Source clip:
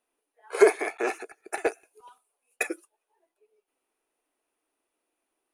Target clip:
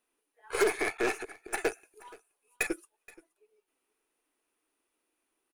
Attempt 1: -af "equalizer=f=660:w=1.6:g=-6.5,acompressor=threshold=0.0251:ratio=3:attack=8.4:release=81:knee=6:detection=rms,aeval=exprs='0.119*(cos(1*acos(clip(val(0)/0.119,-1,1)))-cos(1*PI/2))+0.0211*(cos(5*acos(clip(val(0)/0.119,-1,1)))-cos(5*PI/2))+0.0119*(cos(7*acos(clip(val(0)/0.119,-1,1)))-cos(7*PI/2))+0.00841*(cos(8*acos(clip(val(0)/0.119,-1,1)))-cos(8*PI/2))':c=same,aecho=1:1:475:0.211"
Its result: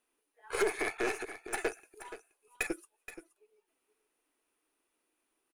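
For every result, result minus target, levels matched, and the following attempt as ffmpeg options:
echo-to-direct +9 dB; compression: peak gain reduction +5.5 dB
-af "equalizer=f=660:w=1.6:g=-6.5,acompressor=threshold=0.0251:ratio=3:attack=8.4:release=81:knee=6:detection=rms,aeval=exprs='0.119*(cos(1*acos(clip(val(0)/0.119,-1,1)))-cos(1*PI/2))+0.0211*(cos(5*acos(clip(val(0)/0.119,-1,1)))-cos(5*PI/2))+0.0119*(cos(7*acos(clip(val(0)/0.119,-1,1)))-cos(7*PI/2))+0.00841*(cos(8*acos(clip(val(0)/0.119,-1,1)))-cos(8*PI/2))':c=same,aecho=1:1:475:0.075"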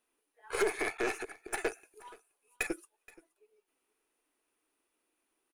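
compression: peak gain reduction +5.5 dB
-af "equalizer=f=660:w=1.6:g=-6.5,acompressor=threshold=0.0631:ratio=3:attack=8.4:release=81:knee=6:detection=rms,aeval=exprs='0.119*(cos(1*acos(clip(val(0)/0.119,-1,1)))-cos(1*PI/2))+0.0211*(cos(5*acos(clip(val(0)/0.119,-1,1)))-cos(5*PI/2))+0.0119*(cos(7*acos(clip(val(0)/0.119,-1,1)))-cos(7*PI/2))+0.00841*(cos(8*acos(clip(val(0)/0.119,-1,1)))-cos(8*PI/2))':c=same,aecho=1:1:475:0.075"

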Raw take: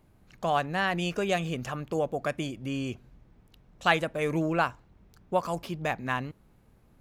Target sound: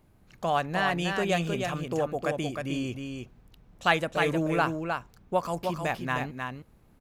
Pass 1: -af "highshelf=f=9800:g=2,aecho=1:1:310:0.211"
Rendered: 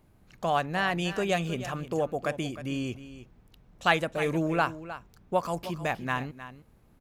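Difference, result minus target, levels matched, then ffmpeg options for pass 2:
echo-to-direct -8.5 dB
-af "highshelf=f=9800:g=2,aecho=1:1:310:0.562"

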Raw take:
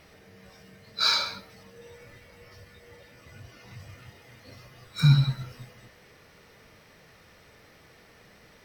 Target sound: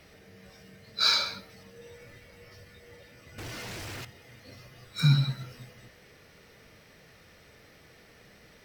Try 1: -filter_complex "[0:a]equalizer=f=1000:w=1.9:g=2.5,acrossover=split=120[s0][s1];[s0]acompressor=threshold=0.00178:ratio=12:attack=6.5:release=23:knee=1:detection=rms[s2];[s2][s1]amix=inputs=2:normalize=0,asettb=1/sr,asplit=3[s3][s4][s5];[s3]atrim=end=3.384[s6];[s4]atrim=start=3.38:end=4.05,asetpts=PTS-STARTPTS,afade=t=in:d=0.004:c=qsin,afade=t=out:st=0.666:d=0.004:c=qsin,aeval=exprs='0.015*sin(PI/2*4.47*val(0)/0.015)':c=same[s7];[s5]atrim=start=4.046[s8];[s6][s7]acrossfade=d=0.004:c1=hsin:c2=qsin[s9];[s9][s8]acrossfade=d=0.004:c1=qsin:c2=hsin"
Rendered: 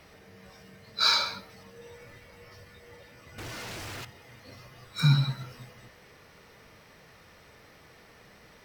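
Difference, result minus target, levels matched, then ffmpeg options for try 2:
1 kHz band +3.5 dB
-filter_complex "[0:a]equalizer=f=1000:w=1.9:g=-4.5,acrossover=split=120[s0][s1];[s0]acompressor=threshold=0.00178:ratio=12:attack=6.5:release=23:knee=1:detection=rms[s2];[s2][s1]amix=inputs=2:normalize=0,asettb=1/sr,asplit=3[s3][s4][s5];[s3]atrim=end=3.384[s6];[s4]atrim=start=3.38:end=4.05,asetpts=PTS-STARTPTS,afade=t=in:d=0.004:c=qsin,afade=t=out:st=0.666:d=0.004:c=qsin,aeval=exprs='0.015*sin(PI/2*4.47*val(0)/0.015)':c=same[s7];[s5]atrim=start=4.046[s8];[s6][s7]acrossfade=d=0.004:c1=hsin:c2=qsin[s9];[s9][s8]acrossfade=d=0.004:c1=qsin:c2=hsin"

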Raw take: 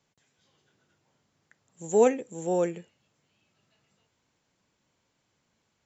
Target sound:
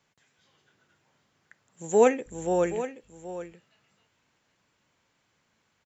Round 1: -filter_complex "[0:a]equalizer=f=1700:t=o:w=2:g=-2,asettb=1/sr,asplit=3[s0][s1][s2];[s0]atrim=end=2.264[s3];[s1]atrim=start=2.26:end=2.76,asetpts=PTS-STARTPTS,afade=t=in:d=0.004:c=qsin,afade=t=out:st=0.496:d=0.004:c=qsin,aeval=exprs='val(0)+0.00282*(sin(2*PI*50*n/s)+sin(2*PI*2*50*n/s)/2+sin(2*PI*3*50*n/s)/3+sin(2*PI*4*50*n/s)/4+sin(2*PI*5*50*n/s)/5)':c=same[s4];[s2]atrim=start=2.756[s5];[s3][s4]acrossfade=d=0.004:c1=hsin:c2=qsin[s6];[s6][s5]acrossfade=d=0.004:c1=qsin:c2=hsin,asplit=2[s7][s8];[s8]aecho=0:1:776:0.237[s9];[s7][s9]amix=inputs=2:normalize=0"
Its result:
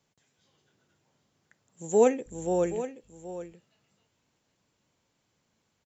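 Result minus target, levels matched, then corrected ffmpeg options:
2 kHz band -7.0 dB
-filter_complex "[0:a]equalizer=f=1700:t=o:w=2:g=6,asettb=1/sr,asplit=3[s0][s1][s2];[s0]atrim=end=2.264[s3];[s1]atrim=start=2.26:end=2.76,asetpts=PTS-STARTPTS,afade=t=in:d=0.004:c=qsin,afade=t=out:st=0.496:d=0.004:c=qsin,aeval=exprs='val(0)+0.00282*(sin(2*PI*50*n/s)+sin(2*PI*2*50*n/s)/2+sin(2*PI*3*50*n/s)/3+sin(2*PI*4*50*n/s)/4+sin(2*PI*5*50*n/s)/5)':c=same[s4];[s2]atrim=start=2.756[s5];[s3][s4]acrossfade=d=0.004:c1=hsin:c2=qsin[s6];[s6][s5]acrossfade=d=0.004:c1=qsin:c2=hsin,asplit=2[s7][s8];[s8]aecho=0:1:776:0.237[s9];[s7][s9]amix=inputs=2:normalize=0"

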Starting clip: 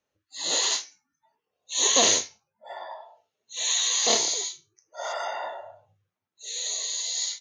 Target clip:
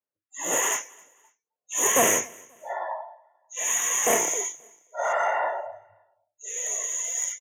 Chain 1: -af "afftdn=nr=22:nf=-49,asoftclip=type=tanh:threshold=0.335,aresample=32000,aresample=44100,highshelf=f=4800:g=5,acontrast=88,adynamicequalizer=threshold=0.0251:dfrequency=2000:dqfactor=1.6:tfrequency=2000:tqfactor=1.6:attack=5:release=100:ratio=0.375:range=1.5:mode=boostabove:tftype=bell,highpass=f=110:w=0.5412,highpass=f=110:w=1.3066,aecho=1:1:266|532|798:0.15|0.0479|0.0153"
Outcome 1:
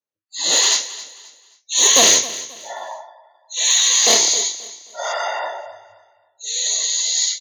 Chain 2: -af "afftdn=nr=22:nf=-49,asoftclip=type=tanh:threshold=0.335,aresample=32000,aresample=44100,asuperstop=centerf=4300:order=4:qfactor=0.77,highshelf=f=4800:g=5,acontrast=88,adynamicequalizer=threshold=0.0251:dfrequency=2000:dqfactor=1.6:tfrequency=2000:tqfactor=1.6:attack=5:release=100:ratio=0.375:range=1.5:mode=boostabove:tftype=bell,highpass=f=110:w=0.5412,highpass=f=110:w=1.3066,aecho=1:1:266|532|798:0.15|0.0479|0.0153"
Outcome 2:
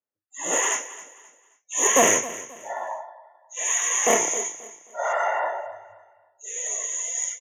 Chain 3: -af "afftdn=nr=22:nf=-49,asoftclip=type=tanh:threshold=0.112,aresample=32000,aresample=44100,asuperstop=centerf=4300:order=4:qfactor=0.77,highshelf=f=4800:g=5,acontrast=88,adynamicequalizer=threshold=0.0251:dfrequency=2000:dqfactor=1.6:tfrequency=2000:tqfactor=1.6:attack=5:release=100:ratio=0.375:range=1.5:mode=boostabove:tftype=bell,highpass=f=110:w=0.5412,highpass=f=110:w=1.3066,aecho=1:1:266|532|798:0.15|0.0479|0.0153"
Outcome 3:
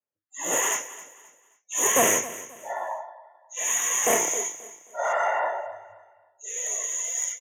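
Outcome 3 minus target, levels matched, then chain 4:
echo-to-direct +9 dB
-af "afftdn=nr=22:nf=-49,asoftclip=type=tanh:threshold=0.112,aresample=32000,aresample=44100,asuperstop=centerf=4300:order=4:qfactor=0.77,highshelf=f=4800:g=5,acontrast=88,adynamicequalizer=threshold=0.0251:dfrequency=2000:dqfactor=1.6:tfrequency=2000:tqfactor=1.6:attack=5:release=100:ratio=0.375:range=1.5:mode=boostabove:tftype=bell,highpass=f=110:w=0.5412,highpass=f=110:w=1.3066,aecho=1:1:266|532:0.0531|0.017"

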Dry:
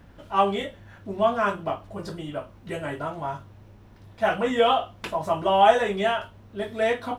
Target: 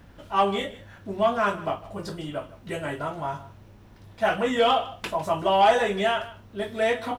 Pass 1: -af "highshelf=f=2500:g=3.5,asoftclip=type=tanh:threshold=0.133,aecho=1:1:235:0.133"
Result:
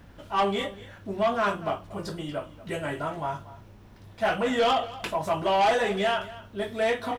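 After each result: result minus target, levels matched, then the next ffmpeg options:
echo 81 ms late; saturation: distortion +8 dB
-af "highshelf=f=2500:g=3.5,asoftclip=type=tanh:threshold=0.133,aecho=1:1:154:0.133"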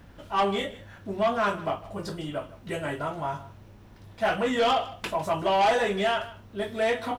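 saturation: distortion +8 dB
-af "highshelf=f=2500:g=3.5,asoftclip=type=tanh:threshold=0.316,aecho=1:1:154:0.133"

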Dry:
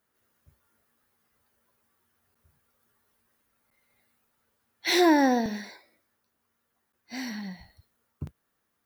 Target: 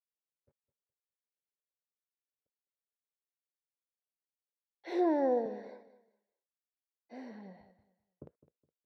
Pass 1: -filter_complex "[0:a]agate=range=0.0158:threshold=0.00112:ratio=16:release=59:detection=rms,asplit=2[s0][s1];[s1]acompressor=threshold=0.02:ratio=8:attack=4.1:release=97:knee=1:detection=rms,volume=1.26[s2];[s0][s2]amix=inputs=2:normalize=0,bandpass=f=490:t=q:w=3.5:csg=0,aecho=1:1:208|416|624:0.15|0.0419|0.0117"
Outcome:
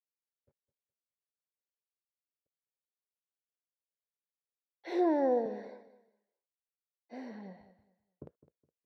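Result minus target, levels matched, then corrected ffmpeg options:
compression: peak gain reduction -6 dB
-filter_complex "[0:a]agate=range=0.0158:threshold=0.00112:ratio=16:release=59:detection=rms,asplit=2[s0][s1];[s1]acompressor=threshold=0.00891:ratio=8:attack=4.1:release=97:knee=1:detection=rms,volume=1.26[s2];[s0][s2]amix=inputs=2:normalize=0,bandpass=f=490:t=q:w=3.5:csg=0,aecho=1:1:208|416|624:0.15|0.0419|0.0117"

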